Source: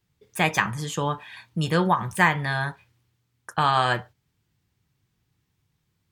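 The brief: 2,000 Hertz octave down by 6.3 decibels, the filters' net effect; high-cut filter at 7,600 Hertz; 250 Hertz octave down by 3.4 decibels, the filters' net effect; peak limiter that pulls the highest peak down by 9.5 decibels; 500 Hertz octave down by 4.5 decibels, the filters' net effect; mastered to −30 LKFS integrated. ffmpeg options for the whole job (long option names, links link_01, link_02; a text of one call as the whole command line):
ffmpeg -i in.wav -af "lowpass=7600,equalizer=frequency=250:width_type=o:gain=-5.5,equalizer=frequency=500:width_type=o:gain=-4,equalizer=frequency=2000:width_type=o:gain=-7.5,volume=1dB,alimiter=limit=-18dB:level=0:latency=1" out.wav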